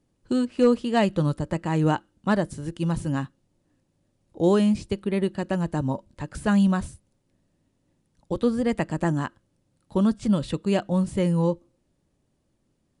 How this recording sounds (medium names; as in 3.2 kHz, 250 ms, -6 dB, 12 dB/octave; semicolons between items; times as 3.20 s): noise floor -72 dBFS; spectral tilt -6.5 dB/octave